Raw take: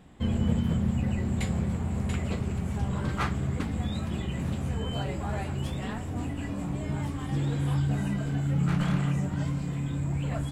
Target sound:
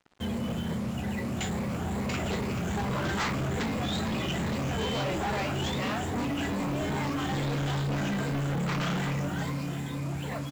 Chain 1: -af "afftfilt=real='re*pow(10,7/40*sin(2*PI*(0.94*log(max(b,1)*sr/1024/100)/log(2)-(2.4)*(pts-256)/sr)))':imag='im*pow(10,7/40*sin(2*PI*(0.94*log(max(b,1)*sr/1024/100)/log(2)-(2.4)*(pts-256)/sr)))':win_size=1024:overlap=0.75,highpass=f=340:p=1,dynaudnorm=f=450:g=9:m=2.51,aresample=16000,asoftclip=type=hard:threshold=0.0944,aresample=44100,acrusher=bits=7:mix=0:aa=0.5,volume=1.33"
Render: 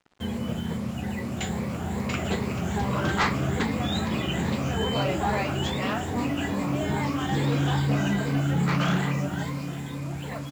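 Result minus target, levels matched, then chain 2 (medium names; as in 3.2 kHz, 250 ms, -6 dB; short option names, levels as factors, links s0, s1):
hard clipper: distortion -12 dB
-af "afftfilt=real='re*pow(10,7/40*sin(2*PI*(0.94*log(max(b,1)*sr/1024/100)/log(2)-(2.4)*(pts-256)/sr)))':imag='im*pow(10,7/40*sin(2*PI*(0.94*log(max(b,1)*sr/1024/100)/log(2)-(2.4)*(pts-256)/sr)))':win_size=1024:overlap=0.75,highpass=f=340:p=1,dynaudnorm=f=450:g=9:m=2.51,aresample=16000,asoftclip=type=hard:threshold=0.0335,aresample=44100,acrusher=bits=7:mix=0:aa=0.5,volume=1.33"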